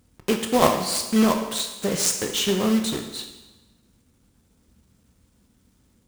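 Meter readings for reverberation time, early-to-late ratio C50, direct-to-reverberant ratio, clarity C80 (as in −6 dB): 1.1 s, 7.5 dB, 5.0 dB, 9.5 dB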